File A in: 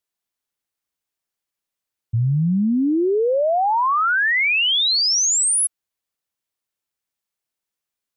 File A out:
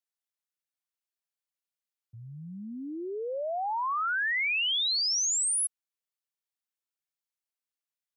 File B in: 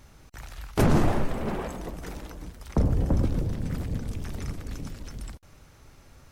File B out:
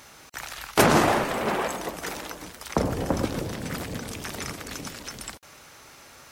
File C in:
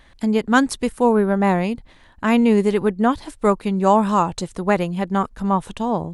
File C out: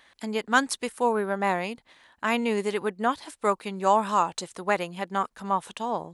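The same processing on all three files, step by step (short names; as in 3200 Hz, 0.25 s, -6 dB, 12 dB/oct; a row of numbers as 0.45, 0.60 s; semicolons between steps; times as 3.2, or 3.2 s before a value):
HPF 840 Hz 6 dB/oct; match loudness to -27 LUFS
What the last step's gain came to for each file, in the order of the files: -9.5, +11.5, -1.5 dB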